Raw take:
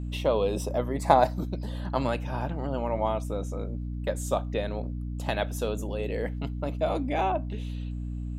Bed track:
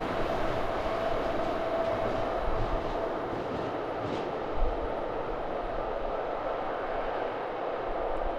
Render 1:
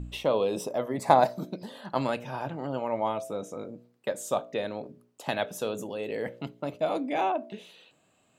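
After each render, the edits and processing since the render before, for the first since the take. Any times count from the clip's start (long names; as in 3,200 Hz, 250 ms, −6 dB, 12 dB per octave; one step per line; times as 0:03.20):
hum removal 60 Hz, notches 11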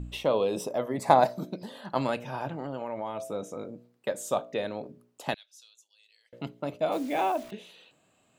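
0:02.53–0:03.20: downward compressor, threshold −29 dBFS
0:05.34–0:06.33: four-pole ladder band-pass 5,400 Hz, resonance 45%
0:06.92–0:07.51: bit-depth reduction 8 bits, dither none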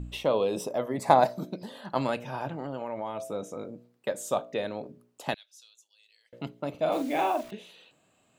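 0:06.70–0:07.41: double-tracking delay 44 ms −6 dB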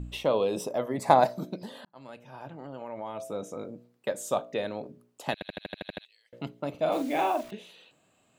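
0:01.85–0:03.49: fade in
0:05.33: stutter in place 0.08 s, 9 plays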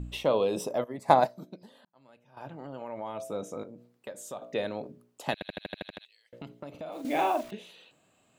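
0:00.84–0:02.37: expander for the loud parts, over −40 dBFS
0:03.63–0:04.42: downward compressor 2 to 1, threshold −45 dBFS
0:05.85–0:07.05: downward compressor, threshold −37 dBFS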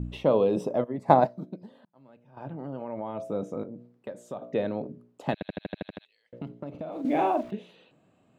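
low-pass filter 1,800 Hz 6 dB per octave
parametric band 180 Hz +7.5 dB 2.9 octaves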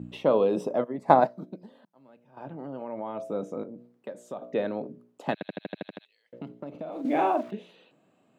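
high-pass filter 180 Hz 12 dB per octave
dynamic equaliser 1,400 Hz, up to +4 dB, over −42 dBFS, Q 1.8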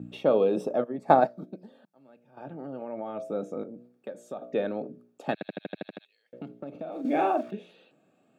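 tape wow and flutter 25 cents
notch comb filter 1,000 Hz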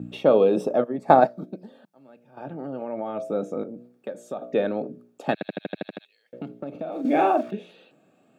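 level +5 dB
brickwall limiter −3 dBFS, peak gain reduction 2 dB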